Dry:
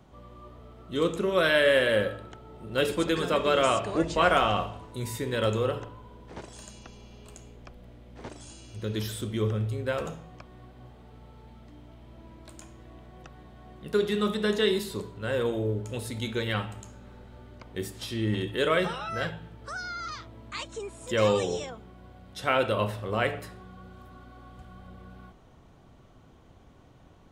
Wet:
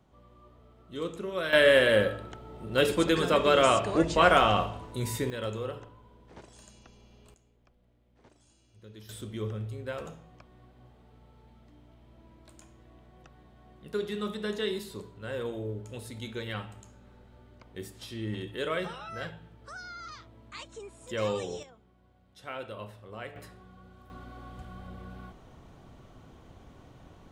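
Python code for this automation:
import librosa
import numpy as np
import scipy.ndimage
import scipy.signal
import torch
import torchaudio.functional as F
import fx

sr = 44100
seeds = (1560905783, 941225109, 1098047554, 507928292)

y = fx.gain(x, sr, db=fx.steps((0.0, -8.5), (1.53, 1.5), (5.3, -8.0), (7.34, -18.0), (9.09, -7.0), (21.63, -14.5), (23.36, -6.0), (24.1, 3.0)))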